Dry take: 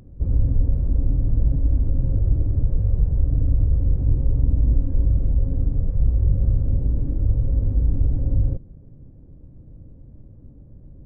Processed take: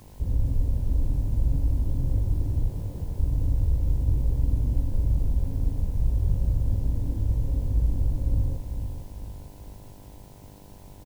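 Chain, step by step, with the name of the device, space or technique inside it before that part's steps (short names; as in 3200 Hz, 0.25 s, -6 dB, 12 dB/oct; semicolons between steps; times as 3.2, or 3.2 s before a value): 2.71–3.19 HPF 140 Hz 12 dB/oct; video cassette with head-switching buzz (buzz 50 Hz, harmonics 21, -48 dBFS -3 dB/oct; white noise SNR 35 dB); feedback echo 0.45 s, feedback 45%, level -8 dB; gain -5.5 dB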